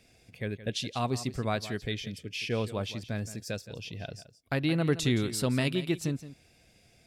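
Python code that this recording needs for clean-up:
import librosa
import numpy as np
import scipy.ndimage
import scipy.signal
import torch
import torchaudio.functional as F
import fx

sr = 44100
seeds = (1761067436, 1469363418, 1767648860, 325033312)

y = fx.fix_echo_inverse(x, sr, delay_ms=170, level_db=-14.5)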